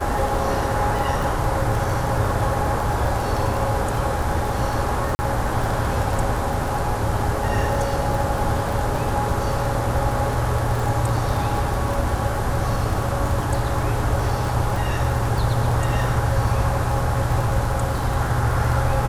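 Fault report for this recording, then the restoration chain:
crackle 21 per s -24 dBFS
5.15–5.19 s: dropout 40 ms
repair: de-click; interpolate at 5.15 s, 40 ms

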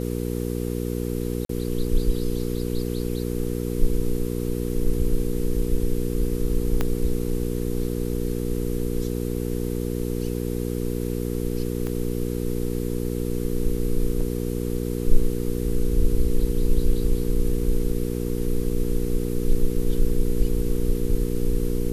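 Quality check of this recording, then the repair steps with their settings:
hum 60 Hz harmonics 8 -27 dBFS
1.45–1.49 s: dropout 43 ms
6.81 s: pop -10 dBFS
11.87 s: pop -17 dBFS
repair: de-click; de-hum 60 Hz, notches 8; interpolate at 1.45 s, 43 ms

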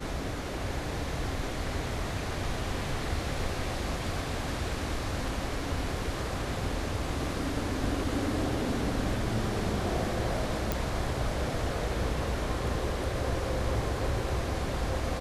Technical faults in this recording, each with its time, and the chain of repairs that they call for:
10.72 s: pop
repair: de-click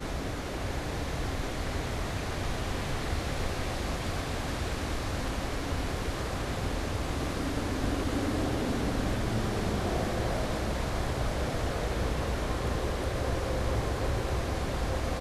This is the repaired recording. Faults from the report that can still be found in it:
nothing left

